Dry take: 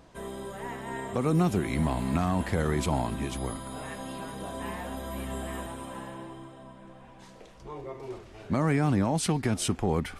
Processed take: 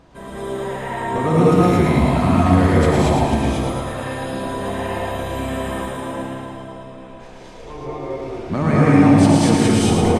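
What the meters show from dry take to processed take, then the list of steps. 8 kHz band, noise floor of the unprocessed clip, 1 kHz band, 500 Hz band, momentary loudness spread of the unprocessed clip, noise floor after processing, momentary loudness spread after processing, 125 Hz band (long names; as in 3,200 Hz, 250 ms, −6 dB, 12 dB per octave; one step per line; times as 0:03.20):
+7.5 dB, −51 dBFS, +12.5 dB, +13.5 dB, 17 LU, −38 dBFS, 18 LU, +12.0 dB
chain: high-shelf EQ 6,700 Hz −9 dB
on a send: repeating echo 111 ms, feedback 59%, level −4 dB
on the sum: reverb whose tail is shaped and stops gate 260 ms rising, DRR −5.5 dB
level +4 dB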